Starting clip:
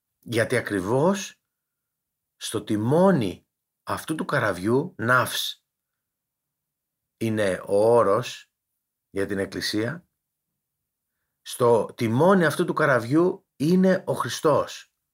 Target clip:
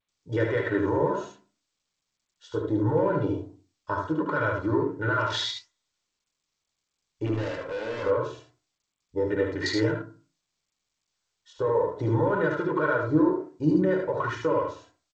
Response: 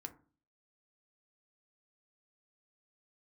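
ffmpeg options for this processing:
-filter_complex "[0:a]afwtdn=0.0224,asettb=1/sr,asplit=3[link_01][link_02][link_03];[link_01]atrim=end=1.094[link_04];[link_02]atrim=start=1.09:end=2.93,asetpts=PTS-STARTPTS,afade=type=in:duration=0.004:curve=qsin,afade=type=out:start_time=1.836:duration=0.004:curve=qsin,highshelf=frequency=5400:gain=-2.5[link_05];[link_03]atrim=start=2.926[link_06];[link_04][link_05]acrossfade=duration=0.004:curve1=hsin:curve2=qsin[link_07];[link_07][link_06]acrossfade=duration=0.004:curve1=qsin:curve2=hsin,aecho=1:1:2.1:0.79,alimiter=limit=-15dB:level=0:latency=1:release=142,acontrast=73,asettb=1/sr,asplit=3[link_08][link_09][link_10];[link_08]atrim=end=7.264[link_11];[link_09]atrim=start=7.26:end=8.03,asetpts=PTS-STARTPTS,afade=type=in:duration=0.004:curve=qsin,afade=type=out:start_time=0.766:duration=0.004:curve=qsin,volume=23dB,asoftclip=hard,volume=-23dB[link_12];[link_10]atrim=start=8.026[link_13];[link_11][link_12]acrossfade=duration=0.004:curve1=hsin:curve2=qsin[link_14];[link_14][link_13]acrossfade=duration=0.004:curve1=qsin:curve2=hsin,flanger=delay=4.6:depth=9.2:regen=82:speed=1.4:shape=sinusoidal,aecho=1:1:72|75:0.376|0.531[link_15];[1:a]atrim=start_sample=2205,afade=type=out:start_time=0.39:duration=0.01,atrim=end_sample=17640[link_16];[link_15][link_16]afir=irnorm=-1:irlink=0" -ar 16000 -c:a g722

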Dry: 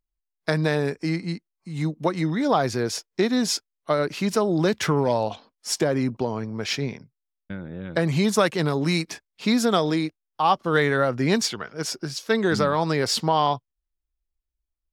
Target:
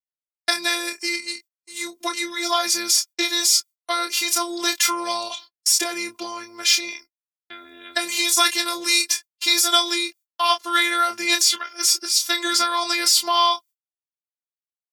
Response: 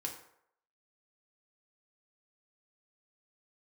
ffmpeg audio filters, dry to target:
-filter_complex "[0:a]afftfilt=real='hypot(re,im)*cos(PI*b)':imag='0':win_size=512:overlap=0.75,agate=range=-38dB:threshold=-47dB:ratio=16:detection=peak,aderivative,asplit=2[link_01][link_02];[link_02]adelay=27,volume=-8dB[link_03];[link_01][link_03]amix=inputs=2:normalize=0,alimiter=level_in=22dB:limit=-1dB:release=50:level=0:latency=1,volume=-1dB"

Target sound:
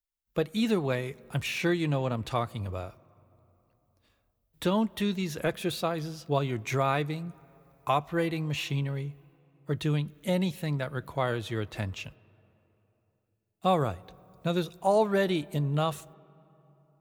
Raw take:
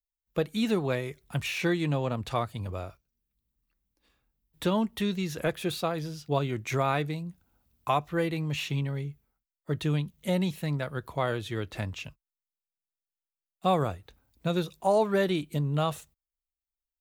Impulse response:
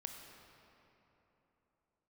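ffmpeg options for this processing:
-filter_complex "[0:a]asplit=2[link_01][link_02];[1:a]atrim=start_sample=2205,lowpass=3600,adelay=9[link_03];[link_02][link_03]afir=irnorm=-1:irlink=0,volume=-16dB[link_04];[link_01][link_04]amix=inputs=2:normalize=0"

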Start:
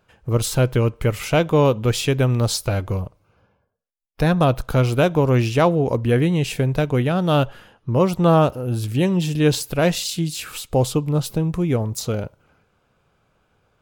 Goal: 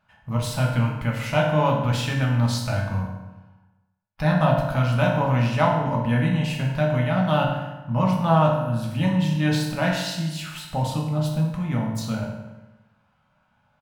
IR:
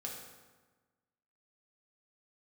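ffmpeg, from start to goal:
-filter_complex "[0:a]firequalizer=gain_entry='entry(130,0);entry(240,3);entry(350,-16);entry(750,5);entry(7400,-5)':delay=0.05:min_phase=1[link_01];[1:a]atrim=start_sample=2205,asetrate=52920,aresample=44100[link_02];[link_01][link_02]afir=irnorm=-1:irlink=0,volume=-1dB"

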